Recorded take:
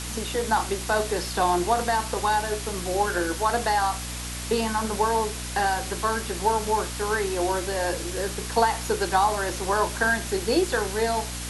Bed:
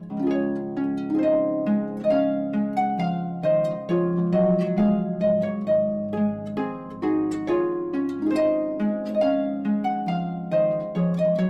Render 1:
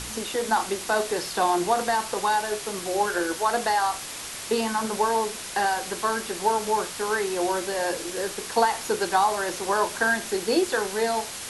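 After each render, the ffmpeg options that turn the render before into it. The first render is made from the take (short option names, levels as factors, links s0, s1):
-af "bandreject=f=60:t=h:w=4,bandreject=f=120:t=h:w=4,bandreject=f=180:t=h:w=4,bandreject=f=240:t=h:w=4,bandreject=f=300:t=h:w=4"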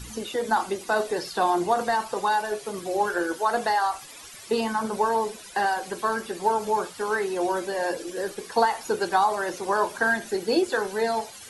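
-af "afftdn=nr=14:nf=-36"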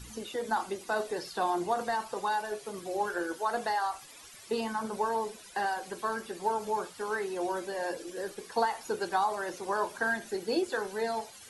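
-af "volume=0.447"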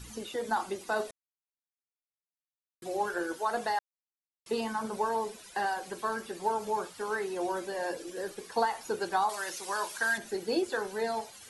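-filter_complex "[0:a]asettb=1/sr,asplit=3[s0][s1][s2];[s0]atrim=end=9.294[s3];[s1]atrim=start=9.29:end=10.18,asetpts=PTS-STARTPTS,afade=t=in:d=0.004:c=qsin,afade=t=out:st=0.886:d=0.004:c=qsin,tiltshelf=f=1300:g=-9[s4];[s2]atrim=start=10.176[s5];[s3][s4]acrossfade=d=0.004:c1=hsin:c2=qsin[s6];[s6][s5]acrossfade=d=0.004:c1=qsin:c2=hsin,asplit=5[s7][s8][s9][s10][s11];[s7]atrim=end=1.11,asetpts=PTS-STARTPTS,afade=t=out:st=1.106:d=0.004:c=hsin[s12];[s8]atrim=start=1.11:end=2.82,asetpts=PTS-STARTPTS,volume=0[s13];[s9]atrim=start=2.82:end=3.79,asetpts=PTS-STARTPTS,afade=t=in:d=0.004:c=hsin,afade=t=out:st=0.966:d=0.004:c=hsin[s14];[s10]atrim=start=3.79:end=4.46,asetpts=PTS-STARTPTS,volume=0[s15];[s11]atrim=start=4.46,asetpts=PTS-STARTPTS,afade=t=in:d=0.004:c=hsin[s16];[s12][s13][s14][s15][s16]concat=n=5:v=0:a=1"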